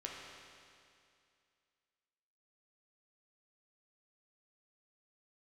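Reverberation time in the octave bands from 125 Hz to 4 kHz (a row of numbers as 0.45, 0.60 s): 2.4, 2.4, 2.4, 2.4, 2.4, 2.4 s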